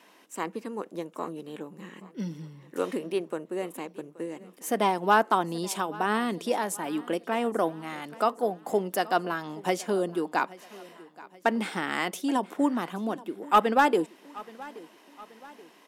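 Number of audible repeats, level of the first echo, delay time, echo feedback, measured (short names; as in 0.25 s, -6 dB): 3, -20.5 dB, 0.827 s, 48%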